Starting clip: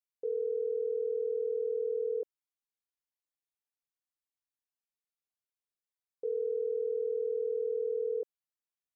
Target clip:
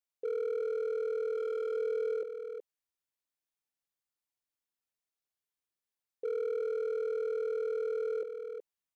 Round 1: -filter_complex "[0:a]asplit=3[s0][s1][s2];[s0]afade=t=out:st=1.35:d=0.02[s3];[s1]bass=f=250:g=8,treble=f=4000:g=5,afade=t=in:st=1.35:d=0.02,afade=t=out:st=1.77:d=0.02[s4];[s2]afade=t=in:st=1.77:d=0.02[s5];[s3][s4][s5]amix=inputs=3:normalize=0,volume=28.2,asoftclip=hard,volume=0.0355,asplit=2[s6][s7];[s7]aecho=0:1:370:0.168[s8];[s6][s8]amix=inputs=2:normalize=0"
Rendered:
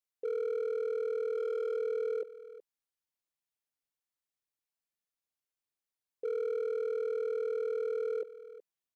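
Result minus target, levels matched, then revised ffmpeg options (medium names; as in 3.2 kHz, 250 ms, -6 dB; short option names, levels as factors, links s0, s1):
echo-to-direct -8 dB
-filter_complex "[0:a]asplit=3[s0][s1][s2];[s0]afade=t=out:st=1.35:d=0.02[s3];[s1]bass=f=250:g=8,treble=f=4000:g=5,afade=t=in:st=1.35:d=0.02,afade=t=out:st=1.77:d=0.02[s4];[s2]afade=t=in:st=1.77:d=0.02[s5];[s3][s4][s5]amix=inputs=3:normalize=0,volume=28.2,asoftclip=hard,volume=0.0355,asplit=2[s6][s7];[s7]aecho=0:1:370:0.422[s8];[s6][s8]amix=inputs=2:normalize=0"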